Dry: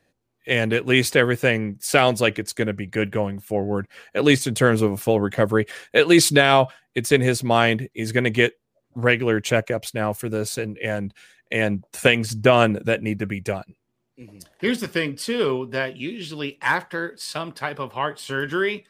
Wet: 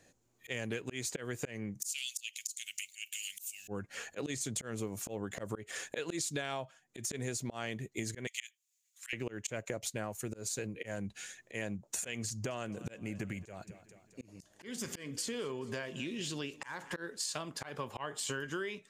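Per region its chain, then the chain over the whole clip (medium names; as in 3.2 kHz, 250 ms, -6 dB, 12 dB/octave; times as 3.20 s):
1.82–3.68 s: elliptic high-pass 2.6 kHz, stop band 60 dB + upward compressor, threshold -34 dBFS + treble shelf 7.1 kHz +11.5 dB
8.27–9.13 s: steep high-pass 2.1 kHz + treble shelf 7.7 kHz +7 dB
12.29–16.97 s: compression 2:1, threshold -36 dBFS + feedback delay 216 ms, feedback 54%, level -22.5 dB
whole clip: peaking EQ 6.9 kHz +14.5 dB 0.47 oct; slow attack 341 ms; compression 10:1, threshold -36 dBFS; trim +1 dB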